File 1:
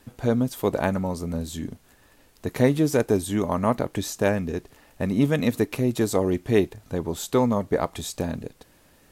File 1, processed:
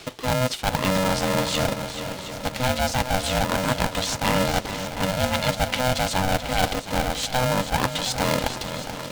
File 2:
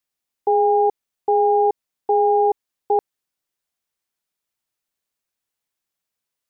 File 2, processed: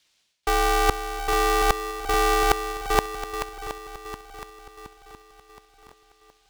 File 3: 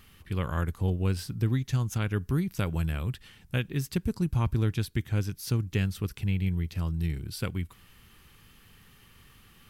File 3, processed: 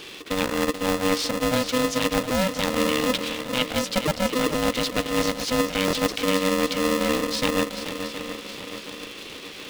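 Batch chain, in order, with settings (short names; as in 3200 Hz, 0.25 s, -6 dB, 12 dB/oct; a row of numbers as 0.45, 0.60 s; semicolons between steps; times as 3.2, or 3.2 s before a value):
resonant high shelf 2100 Hz +11.5 dB, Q 1.5; reverse; compressor 16:1, threshold -30 dBFS; reverse; air absorption 100 m; on a send: swung echo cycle 0.72 s, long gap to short 1.5:1, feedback 47%, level -10 dB; on the sum: stuck buffer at 5.86, samples 1024, times 2; polarity switched at an audio rate 380 Hz; match loudness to -24 LUFS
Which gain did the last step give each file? +11.5, +12.5, +11.0 dB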